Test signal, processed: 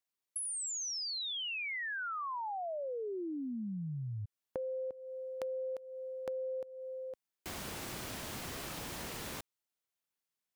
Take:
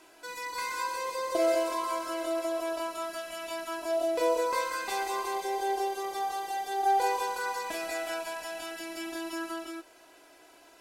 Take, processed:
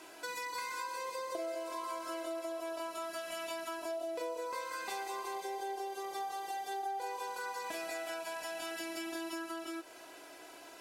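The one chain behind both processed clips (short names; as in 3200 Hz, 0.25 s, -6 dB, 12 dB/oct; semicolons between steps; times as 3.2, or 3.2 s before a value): HPF 91 Hz 6 dB/oct; compressor 6:1, threshold -42 dBFS; gain +4 dB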